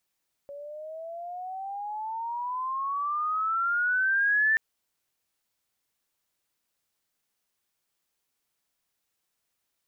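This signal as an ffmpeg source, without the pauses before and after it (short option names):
-f lavfi -i "aevalsrc='pow(10,(-19.5+18.5*(t/4.08-1))/20)*sin(2*PI*562*4.08/(20*log(2)/12)*(exp(20*log(2)/12*t/4.08)-1))':d=4.08:s=44100"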